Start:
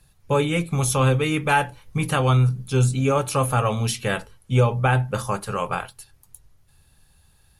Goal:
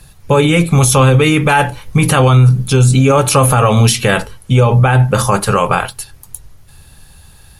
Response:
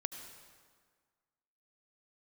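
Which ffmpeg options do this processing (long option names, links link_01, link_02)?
-af "alimiter=level_in=17.5dB:limit=-1dB:release=50:level=0:latency=1,volume=-1dB"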